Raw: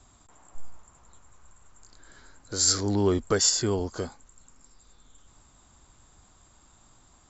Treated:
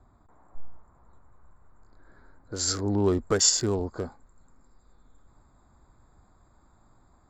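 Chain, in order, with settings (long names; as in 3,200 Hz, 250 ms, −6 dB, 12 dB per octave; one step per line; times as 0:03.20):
adaptive Wiener filter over 15 samples
high-shelf EQ 4,000 Hz −7.5 dB, from 0:03.04 +2.5 dB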